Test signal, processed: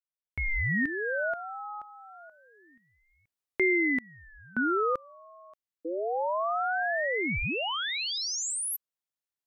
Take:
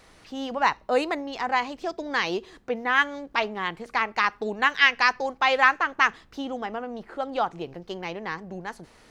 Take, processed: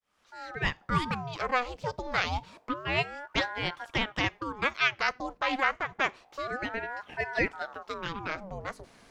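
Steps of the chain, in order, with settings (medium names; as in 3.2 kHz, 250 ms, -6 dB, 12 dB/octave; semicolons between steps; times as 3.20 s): fade-in on the opening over 1.08 s; gain riding within 3 dB 0.5 s; ring modulator with a swept carrier 730 Hz, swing 70%, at 0.28 Hz; trim -2.5 dB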